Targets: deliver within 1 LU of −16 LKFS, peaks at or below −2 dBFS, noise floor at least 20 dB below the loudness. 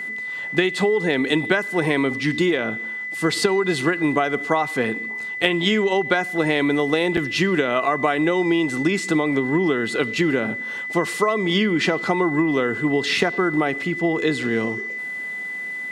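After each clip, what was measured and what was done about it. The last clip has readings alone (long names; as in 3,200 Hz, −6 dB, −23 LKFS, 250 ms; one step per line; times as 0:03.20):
number of dropouts 1; longest dropout 5.9 ms; interfering tone 2,000 Hz; level of the tone −27 dBFS; integrated loudness −21.0 LKFS; sample peak −2.0 dBFS; target loudness −16.0 LKFS
→ repair the gap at 0:07.17, 5.9 ms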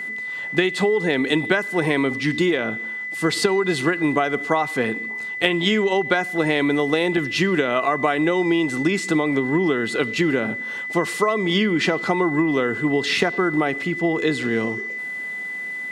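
number of dropouts 0; interfering tone 2,000 Hz; level of the tone −27 dBFS
→ notch filter 2,000 Hz, Q 30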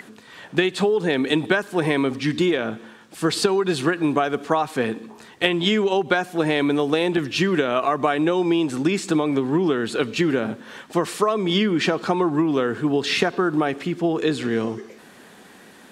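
interfering tone none found; integrated loudness −21.5 LKFS; sample peak −2.5 dBFS; target loudness −16.0 LKFS
→ level +5.5 dB
brickwall limiter −2 dBFS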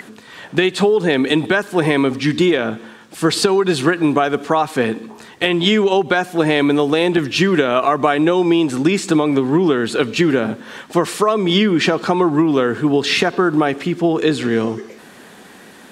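integrated loudness −16.5 LKFS; sample peak −2.0 dBFS; background noise floor −42 dBFS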